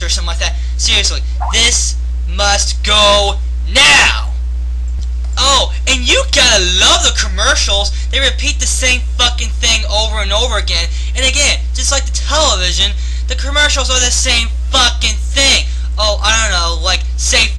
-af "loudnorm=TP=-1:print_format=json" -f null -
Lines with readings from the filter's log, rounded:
"input_i" : "-11.3",
"input_tp" : "-1.7",
"input_lra" : "2.5",
"input_thresh" : "-21.3",